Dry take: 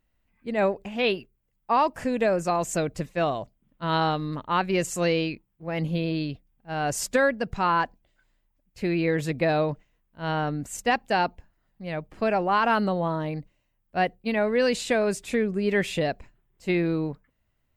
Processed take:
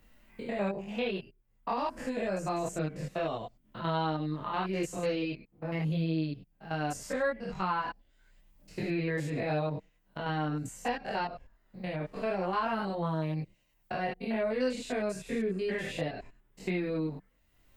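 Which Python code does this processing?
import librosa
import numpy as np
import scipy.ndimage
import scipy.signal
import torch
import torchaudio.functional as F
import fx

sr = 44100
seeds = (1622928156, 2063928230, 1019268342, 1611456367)

y = fx.spec_steps(x, sr, hold_ms=100)
y = fx.chorus_voices(y, sr, voices=4, hz=0.14, base_ms=23, depth_ms=4.2, mix_pct=55)
y = fx.band_squash(y, sr, depth_pct=70)
y = y * librosa.db_to_amplitude(-3.0)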